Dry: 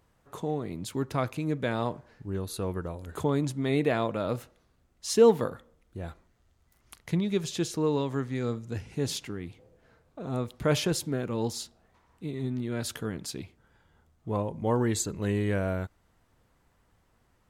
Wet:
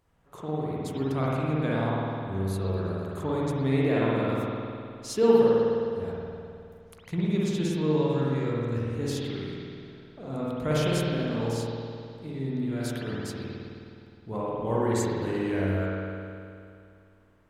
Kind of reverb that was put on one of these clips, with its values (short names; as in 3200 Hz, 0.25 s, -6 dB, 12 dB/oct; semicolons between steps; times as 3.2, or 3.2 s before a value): spring tank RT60 2.5 s, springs 52 ms, chirp 75 ms, DRR -6.5 dB; gain -5.5 dB